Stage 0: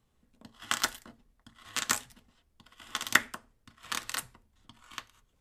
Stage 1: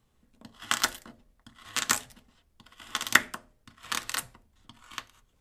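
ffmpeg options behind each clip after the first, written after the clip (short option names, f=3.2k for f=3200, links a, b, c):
-af "bandreject=f=87.24:t=h:w=4,bandreject=f=174.48:t=h:w=4,bandreject=f=261.72:t=h:w=4,bandreject=f=348.96:t=h:w=4,bandreject=f=436.2:t=h:w=4,bandreject=f=523.44:t=h:w=4,bandreject=f=610.68:t=h:w=4,bandreject=f=697.92:t=h:w=4,bandreject=f=785.16:t=h:w=4,volume=3dB"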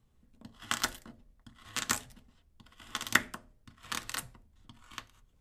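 -af "lowshelf=f=260:g=8.5,volume=-5.5dB"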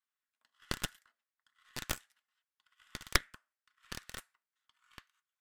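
-af "highpass=f=1.5k:t=q:w=2,aeval=exprs='1*(cos(1*acos(clip(val(0)/1,-1,1)))-cos(1*PI/2))+0.447*(cos(3*acos(clip(val(0)/1,-1,1)))-cos(3*PI/2))+0.178*(cos(8*acos(clip(val(0)/1,-1,1)))-cos(8*PI/2))':c=same,volume=-5dB"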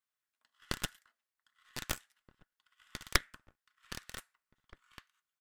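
-filter_complex "[0:a]asplit=2[a][b];[b]adelay=1574,volume=-24dB,highshelf=f=4k:g=-35.4[c];[a][c]amix=inputs=2:normalize=0"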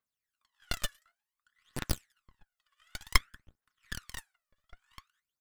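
-filter_complex "[0:a]aphaser=in_gain=1:out_gain=1:delay=1.8:decay=0.75:speed=0.55:type=triangular,asplit=2[a][b];[b]acrusher=bits=4:mix=0:aa=0.000001,volume=-9.5dB[c];[a][c]amix=inputs=2:normalize=0,volume=-4dB"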